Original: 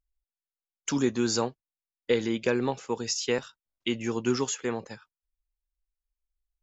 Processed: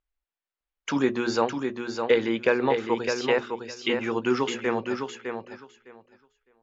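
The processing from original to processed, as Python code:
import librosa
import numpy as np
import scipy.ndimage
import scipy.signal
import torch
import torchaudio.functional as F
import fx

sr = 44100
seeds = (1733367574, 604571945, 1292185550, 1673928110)

p1 = scipy.signal.sosfilt(scipy.signal.butter(2, 2600.0, 'lowpass', fs=sr, output='sos'), x)
p2 = fx.low_shelf(p1, sr, hz=260.0, db=-11.5)
p3 = fx.hum_notches(p2, sr, base_hz=60, count=7)
p4 = p3 + fx.echo_feedback(p3, sr, ms=608, feedback_pct=16, wet_db=-6, dry=0)
y = p4 * librosa.db_to_amplitude(7.5)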